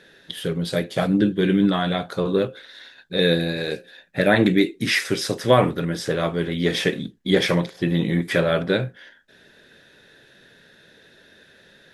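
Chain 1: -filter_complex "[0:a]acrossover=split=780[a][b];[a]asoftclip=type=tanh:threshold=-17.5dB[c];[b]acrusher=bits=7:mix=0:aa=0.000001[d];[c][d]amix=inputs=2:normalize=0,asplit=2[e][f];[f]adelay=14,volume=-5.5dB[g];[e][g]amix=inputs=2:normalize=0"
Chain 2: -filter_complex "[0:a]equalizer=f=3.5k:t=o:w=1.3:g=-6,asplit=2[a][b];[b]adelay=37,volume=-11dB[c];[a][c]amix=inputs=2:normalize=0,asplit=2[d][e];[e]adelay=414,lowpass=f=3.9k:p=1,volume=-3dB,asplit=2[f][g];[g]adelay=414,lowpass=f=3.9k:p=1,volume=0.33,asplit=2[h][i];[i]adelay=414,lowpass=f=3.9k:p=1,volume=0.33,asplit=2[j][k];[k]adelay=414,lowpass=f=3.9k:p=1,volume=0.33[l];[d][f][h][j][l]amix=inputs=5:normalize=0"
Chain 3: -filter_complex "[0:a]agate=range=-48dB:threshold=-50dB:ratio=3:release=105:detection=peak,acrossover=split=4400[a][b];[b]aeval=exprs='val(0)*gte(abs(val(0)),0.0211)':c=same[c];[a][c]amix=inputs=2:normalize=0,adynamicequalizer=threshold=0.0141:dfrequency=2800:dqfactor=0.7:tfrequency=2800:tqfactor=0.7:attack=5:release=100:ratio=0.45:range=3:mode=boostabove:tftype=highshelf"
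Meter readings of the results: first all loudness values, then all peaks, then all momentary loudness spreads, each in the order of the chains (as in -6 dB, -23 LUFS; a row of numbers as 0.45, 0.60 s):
-23.0, -21.0, -21.0 LUFS; -5.0, -3.0, -2.5 dBFS; 10, 9, 10 LU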